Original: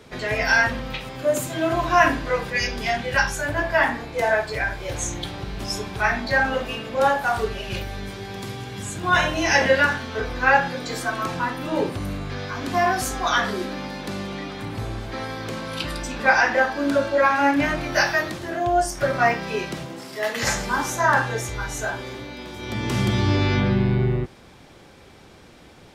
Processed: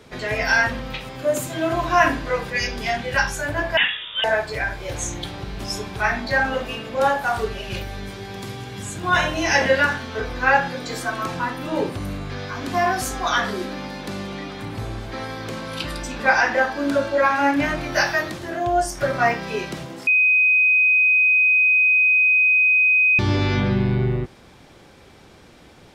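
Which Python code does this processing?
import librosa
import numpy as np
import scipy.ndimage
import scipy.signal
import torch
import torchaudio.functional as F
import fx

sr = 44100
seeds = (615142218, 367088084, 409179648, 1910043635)

y = fx.freq_invert(x, sr, carrier_hz=3600, at=(3.77, 4.24))
y = fx.edit(y, sr, fx.bleep(start_s=20.07, length_s=3.12, hz=2510.0, db=-13.0), tone=tone)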